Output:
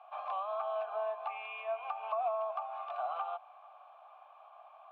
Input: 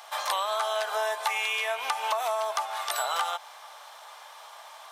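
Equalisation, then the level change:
formant filter a
high-pass filter 440 Hz 12 dB per octave
high-frequency loss of the air 480 metres
+2.5 dB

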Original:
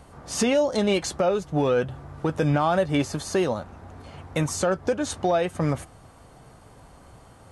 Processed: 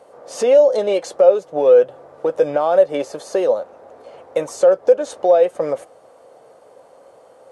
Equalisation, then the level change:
high-pass with resonance 520 Hz, resonance Q 4.9
spectral tilt −3 dB per octave
high-shelf EQ 3,500 Hz +9.5 dB
−3.0 dB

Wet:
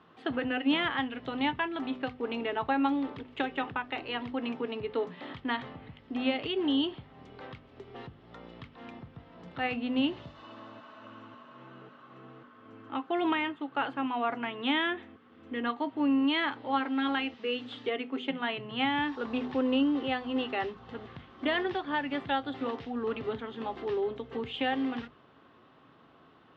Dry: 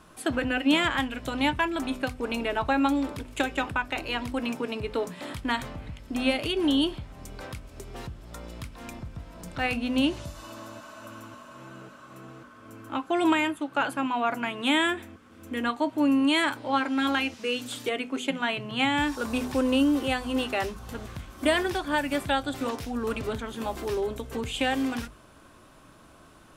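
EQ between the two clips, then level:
loudspeaker in its box 190–3,000 Hz, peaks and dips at 200 Hz −7 dB, 320 Hz −7 dB, 600 Hz −10 dB, 1,000 Hz −6 dB, 1,500 Hz −8 dB, 2,400 Hz −9 dB
+1.5 dB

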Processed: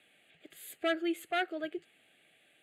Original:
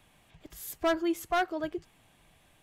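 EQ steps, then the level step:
high-pass filter 400 Hz 12 dB per octave
low-pass filter 9,000 Hz 12 dB per octave
phaser with its sweep stopped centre 2,400 Hz, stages 4
+2.5 dB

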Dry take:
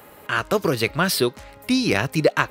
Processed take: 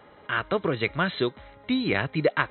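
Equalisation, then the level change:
notch filter 2,600 Hz, Q 8.1
dynamic equaliser 2,200 Hz, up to +4 dB, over −37 dBFS, Q 1.8
linear-phase brick-wall low-pass 4,100 Hz
−5.0 dB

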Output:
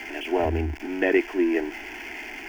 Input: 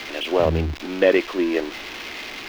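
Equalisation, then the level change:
high-shelf EQ 5,800 Hz −4.5 dB
phaser with its sweep stopped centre 790 Hz, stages 8
0.0 dB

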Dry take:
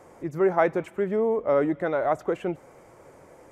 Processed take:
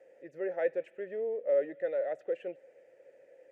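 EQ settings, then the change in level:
formant filter e
high-shelf EQ 3,300 Hz +8.5 dB
−1.0 dB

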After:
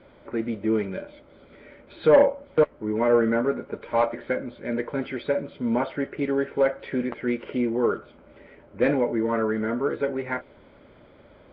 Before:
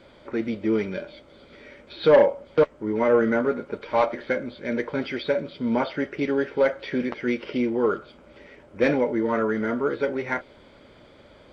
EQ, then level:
low-pass filter 3,900 Hz 12 dB per octave
high-frequency loss of the air 270 metres
0.0 dB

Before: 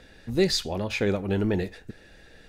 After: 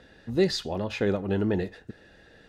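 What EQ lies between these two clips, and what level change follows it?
high-pass filter 82 Hz 6 dB per octave
low-pass filter 3,200 Hz 6 dB per octave
notch filter 2,300 Hz, Q 7.6
0.0 dB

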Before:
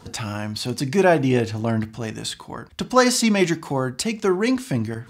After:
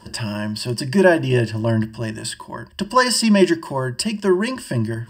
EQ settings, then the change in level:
EQ curve with evenly spaced ripples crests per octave 1.3, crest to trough 15 dB
−1.0 dB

